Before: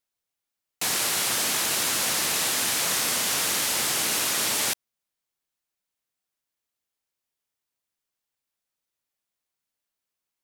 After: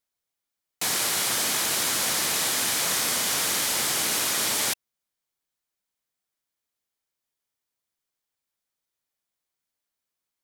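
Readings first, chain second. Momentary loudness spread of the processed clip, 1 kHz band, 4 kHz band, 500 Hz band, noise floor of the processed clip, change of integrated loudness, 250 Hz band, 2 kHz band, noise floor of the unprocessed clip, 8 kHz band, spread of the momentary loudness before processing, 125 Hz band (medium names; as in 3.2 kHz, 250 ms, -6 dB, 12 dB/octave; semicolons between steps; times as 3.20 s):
2 LU, 0.0 dB, 0.0 dB, 0.0 dB, under -85 dBFS, 0.0 dB, 0.0 dB, -0.5 dB, under -85 dBFS, 0.0 dB, 2 LU, 0.0 dB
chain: band-stop 2.7 kHz, Q 20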